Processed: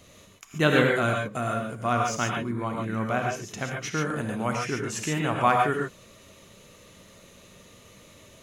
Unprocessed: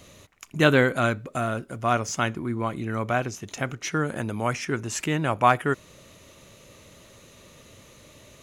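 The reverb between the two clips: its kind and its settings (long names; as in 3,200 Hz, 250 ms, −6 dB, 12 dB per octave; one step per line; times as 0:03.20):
reverb whose tail is shaped and stops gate 160 ms rising, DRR 0.5 dB
level −3.5 dB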